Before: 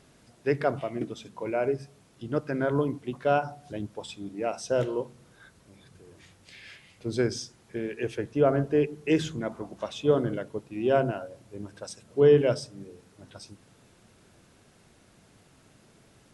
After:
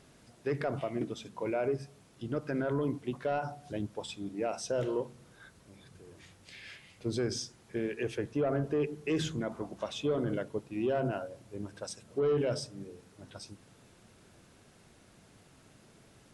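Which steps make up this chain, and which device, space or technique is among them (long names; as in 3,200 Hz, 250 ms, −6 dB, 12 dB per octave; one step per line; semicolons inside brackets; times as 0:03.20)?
soft clipper into limiter (soft clipping −15 dBFS, distortion −17 dB; brickwall limiter −22.5 dBFS, peak gain reduction 7 dB)
level −1 dB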